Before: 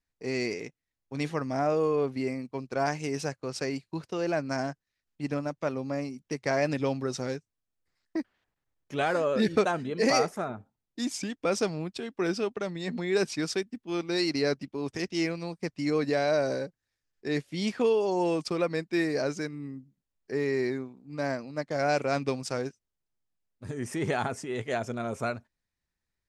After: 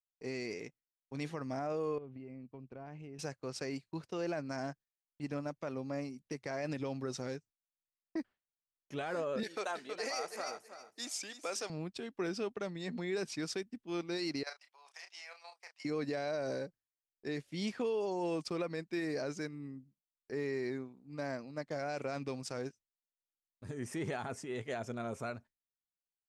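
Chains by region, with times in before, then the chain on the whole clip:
1.98–3.19 EQ curve 130 Hz 0 dB, 1900 Hz -12 dB, 2800 Hz -8 dB, 5200 Hz -25 dB + compressor 5:1, threshold -38 dBFS
9.43–11.7 HPF 530 Hz + high shelf 3900 Hz +6 dB + feedback echo 0.321 s, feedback 20%, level -12 dB
14.43–15.85 steep high-pass 690 Hz + level quantiser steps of 11 dB + doubler 32 ms -8 dB
whole clip: limiter -21.5 dBFS; gate with hold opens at -48 dBFS; gain -6.5 dB

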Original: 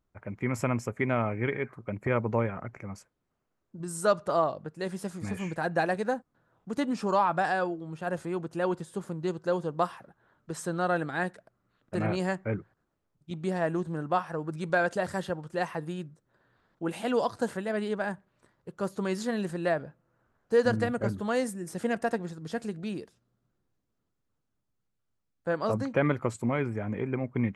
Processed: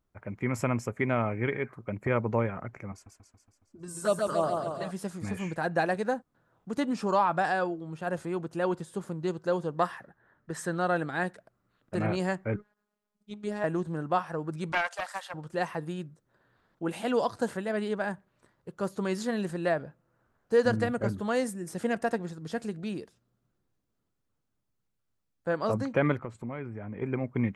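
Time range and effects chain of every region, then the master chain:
2.92–4.91 envelope flanger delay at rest 3.5 ms, full sweep at -21 dBFS + warbling echo 0.139 s, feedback 62%, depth 81 cents, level -3.5 dB
9.76–10.75 bell 1800 Hz +12 dB 0.29 oct + mismatched tape noise reduction decoder only
12.56–13.64 low shelf 120 Hz -10 dB + robotiser 208 Hz
14.72–15.34 steep high-pass 680 Hz + Doppler distortion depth 0.24 ms
26.17–27.02 tone controls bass +1 dB, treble -14 dB + compressor 2:1, threshold -40 dBFS
whole clip: dry

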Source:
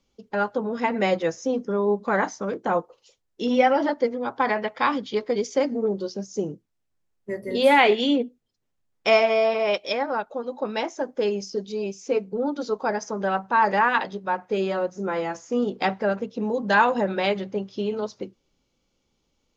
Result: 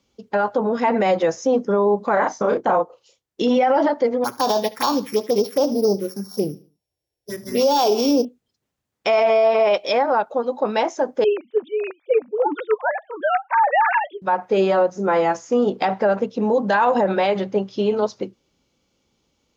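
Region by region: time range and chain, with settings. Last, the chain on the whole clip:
2.13–3.42 transient shaper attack +5 dB, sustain -6 dB + doubler 33 ms -4 dB
4.24–8.25 sample sorter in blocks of 8 samples + envelope phaser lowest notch 200 Hz, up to 2000 Hz, full sweep at -20 dBFS + feedback echo 73 ms, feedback 37%, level -19 dB
11.24–14.22 sine-wave speech + tilt shelf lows -5 dB, about 1100 Hz
whole clip: dynamic EQ 750 Hz, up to +8 dB, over -34 dBFS, Q 0.89; HPF 56 Hz; limiter -15 dBFS; gain +5 dB

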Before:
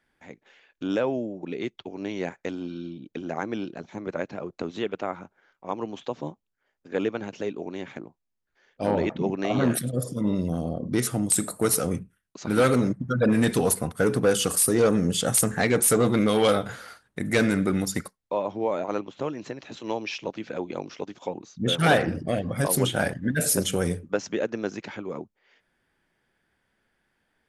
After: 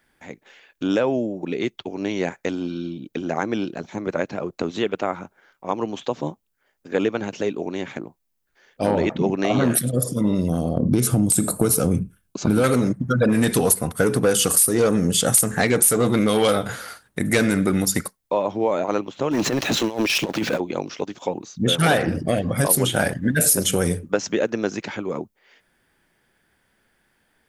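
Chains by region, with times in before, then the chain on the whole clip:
10.77–12.64 compressor 2:1, threshold -26 dBFS + Butterworth band-stop 1900 Hz, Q 8 + low shelf 440 Hz +10.5 dB
19.31–20.6 negative-ratio compressor -36 dBFS, ratio -0.5 + sample leveller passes 3
whole clip: high shelf 9300 Hz +11 dB; compressor 3:1, threshold -22 dBFS; gain +6.5 dB

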